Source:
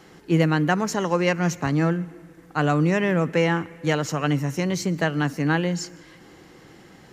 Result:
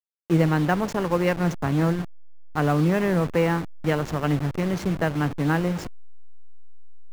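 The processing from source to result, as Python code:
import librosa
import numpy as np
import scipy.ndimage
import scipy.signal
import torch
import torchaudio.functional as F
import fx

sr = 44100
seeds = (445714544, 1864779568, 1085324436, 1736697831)

y = fx.delta_hold(x, sr, step_db=-25.5)
y = fx.high_shelf(y, sr, hz=3200.0, db=-10.0)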